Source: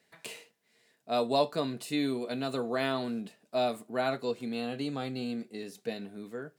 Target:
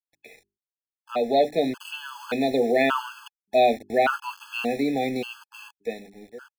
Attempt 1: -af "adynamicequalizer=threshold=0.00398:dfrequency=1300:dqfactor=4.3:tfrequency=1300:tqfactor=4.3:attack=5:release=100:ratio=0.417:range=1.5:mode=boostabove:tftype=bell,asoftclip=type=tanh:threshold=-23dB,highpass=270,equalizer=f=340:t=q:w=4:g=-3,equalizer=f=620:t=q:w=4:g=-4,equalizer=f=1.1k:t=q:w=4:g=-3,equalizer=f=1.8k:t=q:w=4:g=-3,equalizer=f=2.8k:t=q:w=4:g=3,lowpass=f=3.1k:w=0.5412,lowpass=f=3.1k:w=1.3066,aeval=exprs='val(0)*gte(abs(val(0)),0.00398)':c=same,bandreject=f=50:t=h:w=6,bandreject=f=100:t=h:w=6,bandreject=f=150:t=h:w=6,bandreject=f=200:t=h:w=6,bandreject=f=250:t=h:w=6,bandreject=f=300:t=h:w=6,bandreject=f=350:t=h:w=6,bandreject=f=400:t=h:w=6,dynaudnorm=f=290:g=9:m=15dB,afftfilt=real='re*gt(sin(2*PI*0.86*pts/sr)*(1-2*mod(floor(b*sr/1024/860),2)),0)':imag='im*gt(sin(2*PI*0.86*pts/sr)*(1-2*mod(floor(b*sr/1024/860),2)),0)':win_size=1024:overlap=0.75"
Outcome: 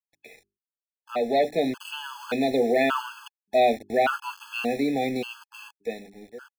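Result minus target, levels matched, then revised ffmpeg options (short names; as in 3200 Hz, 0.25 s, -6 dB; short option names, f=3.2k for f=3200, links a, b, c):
soft clip: distortion +11 dB
-af "adynamicequalizer=threshold=0.00398:dfrequency=1300:dqfactor=4.3:tfrequency=1300:tqfactor=4.3:attack=5:release=100:ratio=0.417:range=1.5:mode=boostabove:tftype=bell,asoftclip=type=tanh:threshold=-15.5dB,highpass=270,equalizer=f=340:t=q:w=4:g=-3,equalizer=f=620:t=q:w=4:g=-4,equalizer=f=1.1k:t=q:w=4:g=-3,equalizer=f=1.8k:t=q:w=4:g=-3,equalizer=f=2.8k:t=q:w=4:g=3,lowpass=f=3.1k:w=0.5412,lowpass=f=3.1k:w=1.3066,aeval=exprs='val(0)*gte(abs(val(0)),0.00398)':c=same,bandreject=f=50:t=h:w=6,bandreject=f=100:t=h:w=6,bandreject=f=150:t=h:w=6,bandreject=f=200:t=h:w=6,bandreject=f=250:t=h:w=6,bandreject=f=300:t=h:w=6,bandreject=f=350:t=h:w=6,bandreject=f=400:t=h:w=6,dynaudnorm=f=290:g=9:m=15dB,afftfilt=real='re*gt(sin(2*PI*0.86*pts/sr)*(1-2*mod(floor(b*sr/1024/860),2)),0)':imag='im*gt(sin(2*PI*0.86*pts/sr)*(1-2*mod(floor(b*sr/1024/860),2)),0)':win_size=1024:overlap=0.75"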